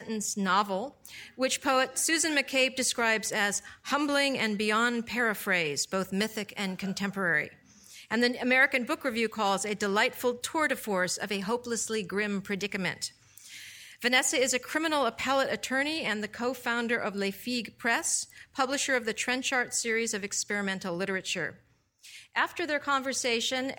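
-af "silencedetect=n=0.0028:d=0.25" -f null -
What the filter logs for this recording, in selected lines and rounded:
silence_start: 21.59
silence_end: 22.04 | silence_duration: 0.45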